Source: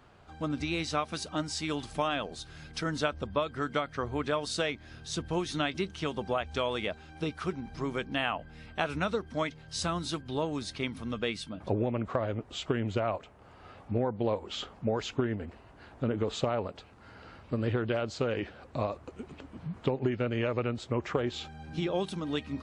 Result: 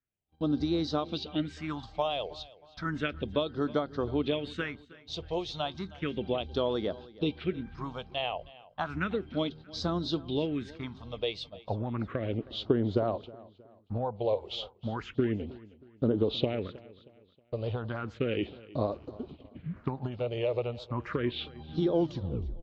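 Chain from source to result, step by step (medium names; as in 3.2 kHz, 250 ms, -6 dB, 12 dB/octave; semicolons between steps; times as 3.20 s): tape stop on the ending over 0.69 s; phase shifter stages 4, 0.33 Hz, lowest notch 250–2500 Hz; dynamic bell 350 Hz, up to +6 dB, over -45 dBFS, Q 1; gate -45 dBFS, range -34 dB; level-controlled noise filter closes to 2.9 kHz, open at -29.5 dBFS; four-pole ladder low-pass 4.5 kHz, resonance 40%; feedback delay 316 ms, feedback 38%, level -20 dB; trim +7.5 dB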